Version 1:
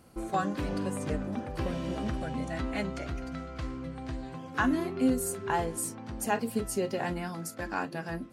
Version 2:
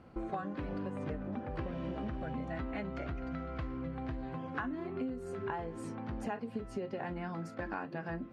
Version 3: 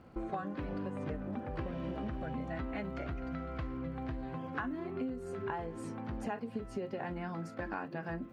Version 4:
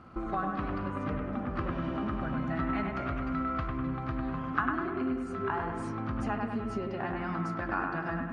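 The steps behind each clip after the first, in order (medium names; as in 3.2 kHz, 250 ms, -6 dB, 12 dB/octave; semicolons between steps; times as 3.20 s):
low-pass 2.4 kHz 12 dB/octave; compression 12:1, threshold -36 dBFS, peak gain reduction 15.5 dB; trim +1.5 dB
crackle 100 per s -64 dBFS
graphic EQ with 31 bands 500 Hz -7 dB, 1.25 kHz +12 dB, 8 kHz -6 dB; bucket-brigade echo 100 ms, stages 2048, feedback 56%, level -3.5 dB; resampled via 22.05 kHz; trim +3.5 dB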